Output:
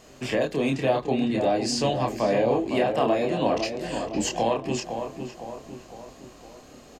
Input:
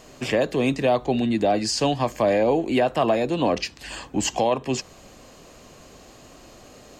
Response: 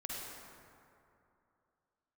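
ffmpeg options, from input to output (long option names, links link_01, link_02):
-filter_complex "[0:a]flanger=delay=22.5:depth=7.7:speed=0.5,asplit=2[link_01][link_02];[link_02]adelay=508,lowpass=frequency=1900:poles=1,volume=-7dB,asplit=2[link_03][link_04];[link_04]adelay=508,lowpass=frequency=1900:poles=1,volume=0.53,asplit=2[link_05][link_06];[link_06]adelay=508,lowpass=frequency=1900:poles=1,volume=0.53,asplit=2[link_07][link_08];[link_08]adelay=508,lowpass=frequency=1900:poles=1,volume=0.53,asplit=2[link_09][link_10];[link_10]adelay=508,lowpass=frequency=1900:poles=1,volume=0.53,asplit=2[link_11][link_12];[link_12]adelay=508,lowpass=frequency=1900:poles=1,volume=0.53[link_13];[link_03][link_05][link_07][link_09][link_11][link_13]amix=inputs=6:normalize=0[link_14];[link_01][link_14]amix=inputs=2:normalize=0"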